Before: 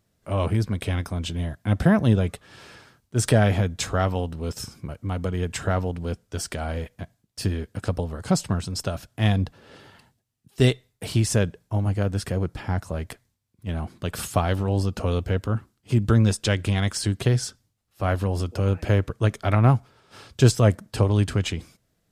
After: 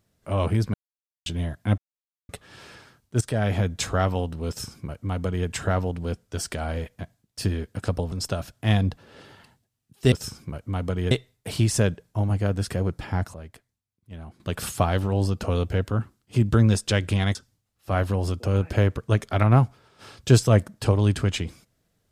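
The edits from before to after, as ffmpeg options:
-filter_complex "[0:a]asplit=12[s0][s1][s2][s3][s4][s5][s6][s7][s8][s9][s10][s11];[s0]atrim=end=0.74,asetpts=PTS-STARTPTS,afade=t=out:st=0.736:d=0.004:c=hsin[s12];[s1]atrim=start=0.74:end=1.26,asetpts=PTS-STARTPTS,volume=0[s13];[s2]atrim=start=1.26:end=1.78,asetpts=PTS-STARTPTS,afade=t=in:d=0.004:c=hsin,afade=t=out:st=0.516:d=0.004:c=hsin[s14];[s3]atrim=start=1.78:end=2.29,asetpts=PTS-STARTPTS,volume=0[s15];[s4]atrim=start=2.29:end=3.21,asetpts=PTS-STARTPTS,afade=t=in:d=0.004:c=hsin,afade=t=out:st=0.916:d=0.004:c=hsin:silence=0.149624[s16];[s5]atrim=start=3.21:end=8.122,asetpts=PTS-STARTPTS,afade=t=in:d=0.46:silence=0.149624[s17];[s6]atrim=start=8.668:end=10.672[s18];[s7]atrim=start=4.478:end=5.472[s19];[s8]atrim=start=10.668:end=12.902[s20];[s9]atrim=start=12.898:end=13.962,asetpts=PTS-STARTPTS,volume=0.282[s21];[s10]atrim=start=13.958:end=16.912[s22];[s11]atrim=start=17.468[s23];[s12][s13][s14][s15][s16][s17]concat=n=6:v=0:a=1[s24];[s24][s18]acrossfade=d=0.004:c1=hsin:c2=hsin[s25];[s25][s19]acrossfade=d=0.004:c1=hsin:c2=hsin[s26];[s26][s20]acrossfade=d=0.004:c1=hsin:c2=hsin[s27];[s27][s21]acrossfade=d=0.004:c1=hsin:c2=hsin[s28];[s28][s22]acrossfade=d=0.004:c1=hsin:c2=hsin[s29];[s29][s23]acrossfade=d=0.004:c1=hsin:c2=hsin"

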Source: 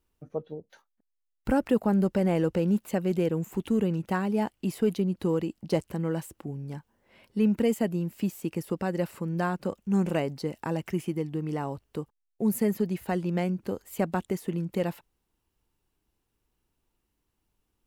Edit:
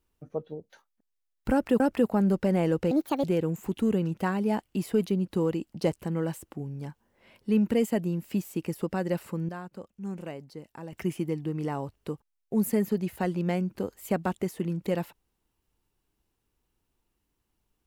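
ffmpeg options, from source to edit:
-filter_complex "[0:a]asplit=6[s0][s1][s2][s3][s4][s5];[s0]atrim=end=1.802[s6];[s1]atrim=start=1.518:end=2.634[s7];[s2]atrim=start=2.63:end=3.12,asetpts=PTS-STARTPTS,asetrate=66150,aresample=44100[s8];[s3]atrim=start=3.116:end=9.372[s9];[s4]atrim=start=9.368:end=10.812,asetpts=PTS-STARTPTS,volume=0.282[s10];[s5]atrim=start=10.808[s11];[s6][s7]acrossfade=d=0.004:c1=hsin:c2=hsin[s12];[s12][s8]acrossfade=d=0.004:c1=hsin:c2=hsin[s13];[s13][s9]acrossfade=d=0.004:c1=hsin:c2=hsin[s14];[s14][s10]acrossfade=d=0.004:c1=hsin:c2=hsin[s15];[s15][s11]acrossfade=d=0.004:c1=hsin:c2=hsin"

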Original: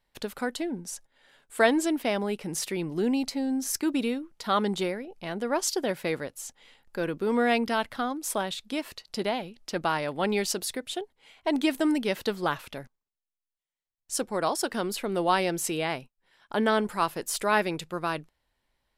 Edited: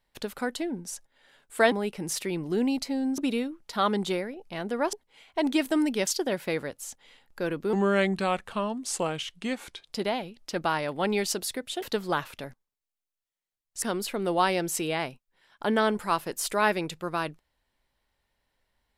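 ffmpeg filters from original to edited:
-filter_complex "[0:a]asplit=9[s0][s1][s2][s3][s4][s5][s6][s7][s8];[s0]atrim=end=1.722[s9];[s1]atrim=start=2.178:end=3.642[s10];[s2]atrim=start=3.888:end=5.642[s11];[s3]atrim=start=11.018:end=12.162[s12];[s4]atrim=start=5.638:end=7.304[s13];[s5]atrim=start=7.3:end=9.12,asetpts=PTS-STARTPTS,asetrate=36603,aresample=44100,atrim=end_sample=96701,asetpts=PTS-STARTPTS[s14];[s6]atrim=start=9.116:end=11.022[s15];[s7]atrim=start=12.158:end=14.162[s16];[s8]atrim=start=14.718[s17];[s9][s10]acrossfade=d=0.004:c1=hsin:c2=hsin[s18];[s18][s11]acrossfade=d=0.004:c1=hsin:c2=hsin[s19];[s19][s12]acrossfade=d=0.004:c1=hsin:c2=hsin[s20];[s20][s13]acrossfade=d=0.004:c1=hsin:c2=hsin[s21];[s21][s14]acrossfade=d=0.004:c1=hsin:c2=hsin[s22];[s22][s15]acrossfade=d=0.004:c1=hsin:c2=hsin[s23];[s23][s16]acrossfade=d=0.004:c1=hsin:c2=hsin[s24];[s24][s17]acrossfade=d=0.004:c1=hsin:c2=hsin"

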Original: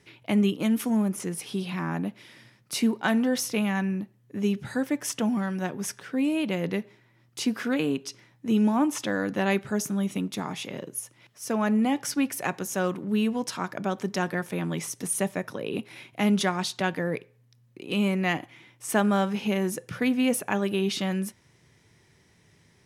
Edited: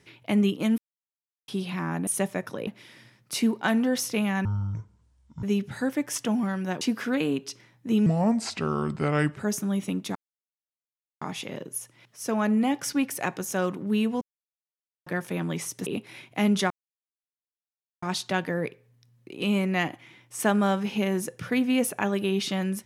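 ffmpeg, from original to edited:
-filter_complex "[0:a]asplit=15[s0][s1][s2][s3][s4][s5][s6][s7][s8][s9][s10][s11][s12][s13][s14];[s0]atrim=end=0.78,asetpts=PTS-STARTPTS,afade=t=out:st=0.776:d=0.004:c=hsin[s15];[s1]atrim=start=0.78:end=1.48,asetpts=PTS-STARTPTS,volume=0[s16];[s2]atrim=start=1.48:end=2.072,asetpts=PTS-STARTPTS,afade=t=in:d=0.004:c=hsin[s17];[s3]atrim=start=15.078:end=15.682[s18];[s4]atrim=start=2.068:end=3.854[s19];[s5]atrim=start=3.85:end=4.37,asetpts=PTS-STARTPTS,asetrate=23373,aresample=44100[s20];[s6]atrim=start=4.366:end=5.752[s21];[s7]atrim=start=7.398:end=8.654[s22];[s8]atrim=start=8.65:end=9.64,asetpts=PTS-STARTPTS,asetrate=33516,aresample=44100,atrim=end_sample=57446,asetpts=PTS-STARTPTS[s23];[s9]atrim=start=9.636:end=10.43,asetpts=PTS-STARTPTS,afade=t=out:st=0.79:d=0.004:c=hsin,apad=pad_dur=1.06[s24];[s10]atrim=start=10.43:end=13.43,asetpts=PTS-STARTPTS,afade=t=in:d=0.004:c=hsin,afade=t=out:st=2.996:d=0.004:c=hsin[s25];[s11]atrim=start=13.43:end=14.28,asetpts=PTS-STARTPTS,volume=0[s26];[s12]atrim=start=14.28:end=15.082,asetpts=PTS-STARTPTS,afade=t=in:d=0.004:c=hsin[s27];[s13]atrim=start=15.678:end=16.52,asetpts=PTS-STARTPTS,afade=t=out:st=0.838:d=0.004:c=hsin,apad=pad_dur=1.32[s28];[s14]atrim=start=16.52,asetpts=PTS-STARTPTS,afade=t=in:d=0.004:c=hsin[s29];[s15][s16][s17]concat=n=3:v=0:a=1[s30];[s30][s18]acrossfade=d=0.004:c1=hsin:c2=hsin[s31];[s31][s19]acrossfade=d=0.004:c1=hsin:c2=hsin[s32];[s32][s20]acrossfade=d=0.004:c1=hsin:c2=hsin[s33];[s33][s21]acrossfade=d=0.004:c1=hsin:c2=hsin[s34];[s34][s22]acrossfade=d=0.004:c1=hsin:c2=hsin[s35];[s35][s23]acrossfade=d=0.004:c1=hsin:c2=hsin[s36];[s24][s25][s26][s27]concat=n=4:v=0:a=1[s37];[s36][s37]acrossfade=d=0.004:c1=hsin:c2=hsin[s38];[s28][s29]concat=n=2:v=0:a=1[s39];[s38][s39]acrossfade=d=0.004:c1=hsin:c2=hsin"

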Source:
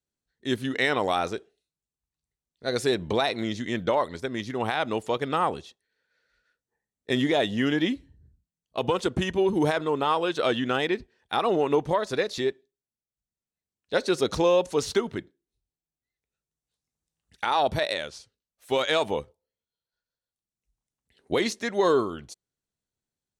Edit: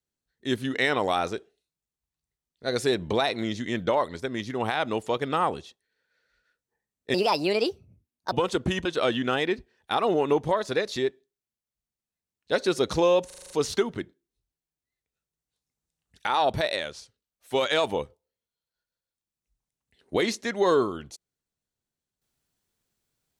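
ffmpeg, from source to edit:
-filter_complex "[0:a]asplit=10[s0][s1][s2][s3][s4][s5][s6][s7][s8][s9];[s0]atrim=end=7.144[s10];[s1]atrim=start=7.14:end=8.83,asetpts=PTS-STARTPTS,asetrate=63063,aresample=44100,atrim=end_sample=52118,asetpts=PTS-STARTPTS[s11];[s2]atrim=start=8.826:end=9.362[s12];[s3]atrim=start=10.268:end=14.722[s13];[s4]atrim=start=14.678:end=14.722[s14];[s5]atrim=start=14.678:end=14.722[s15];[s6]atrim=start=14.678:end=14.722[s16];[s7]atrim=start=14.678:end=14.722[s17];[s8]atrim=start=14.678:end=14.722[s18];[s9]atrim=start=14.678[s19];[s10][s11]acrossfade=d=0.004:c1=hsin:c2=hsin[s20];[s20][s12]acrossfade=d=0.004:c1=hsin:c2=hsin[s21];[s21][s13]acrossfade=d=0.004:c1=hsin:c2=hsin[s22];[s22][s14]acrossfade=d=0.004:c1=hsin:c2=hsin[s23];[s23][s15]acrossfade=d=0.004:c1=hsin:c2=hsin[s24];[s24][s16]acrossfade=d=0.004:c1=hsin:c2=hsin[s25];[s25][s17]acrossfade=d=0.004:c1=hsin:c2=hsin[s26];[s26][s18]acrossfade=d=0.004:c1=hsin:c2=hsin[s27];[s27][s19]acrossfade=d=0.004:c1=hsin:c2=hsin"

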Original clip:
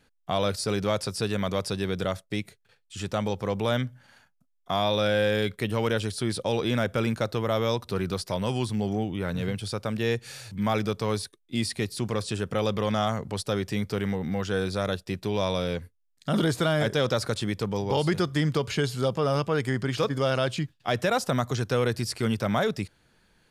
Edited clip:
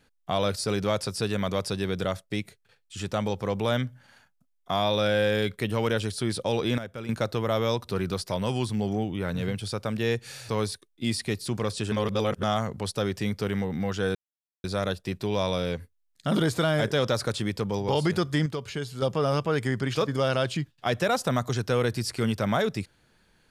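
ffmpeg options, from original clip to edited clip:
-filter_complex "[0:a]asplit=9[s0][s1][s2][s3][s4][s5][s6][s7][s8];[s0]atrim=end=6.782[s9];[s1]atrim=start=6.778:end=7.092,asetpts=PTS-STARTPTS,volume=0.282[s10];[s2]atrim=start=7.088:end=10.492[s11];[s3]atrim=start=10.998:end=12.432[s12];[s4]atrim=start=12.428:end=12.942,asetpts=PTS-STARTPTS,areverse[s13];[s5]atrim=start=12.938:end=14.66,asetpts=PTS-STARTPTS,afade=t=out:st=1.718:d=0.004:c=hsin,apad=pad_dur=0.49[s14];[s6]atrim=start=14.66:end=18.482,asetpts=PTS-STARTPTS,afade=t=in:d=0.004:c=hsin[s15];[s7]atrim=start=18.478:end=19.042,asetpts=PTS-STARTPTS,volume=0.473[s16];[s8]atrim=start=19.038[s17];[s9][s10]acrossfade=d=0.004:c1=hsin:c2=hsin[s18];[s18][s11]acrossfade=d=0.004:c1=hsin:c2=hsin[s19];[s19][s12]acrossfade=d=0.004:c1=hsin:c2=hsin[s20];[s20][s13]acrossfade=d=0.004:c1=hsin:c2=hsin[s21];[s14][s15]concat=n=2:v=0:a=1[s22];[s21][s22]acrossfade=d=0.004:c1=hsin:c2=hsin[s23];[s23][s16]acrossfade=d=0.004:c1=hsin:c2=hsin[s24];[s24][s17]acrossfade=d=0.004:c1=hsin:c2=hsin"

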